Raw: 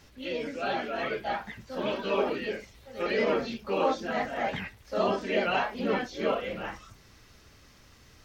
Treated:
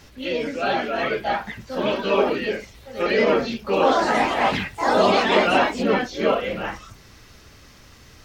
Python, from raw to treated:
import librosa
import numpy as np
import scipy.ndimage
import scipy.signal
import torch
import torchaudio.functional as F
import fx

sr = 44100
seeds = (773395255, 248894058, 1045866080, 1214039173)

y = fx.echo_pitch(x, sr, ms=183, semitones=4, count=2, db_per_echo=-3.0, at=(3.55, 6.19))
y = y * 10.0 ** (8.0 / 20.0)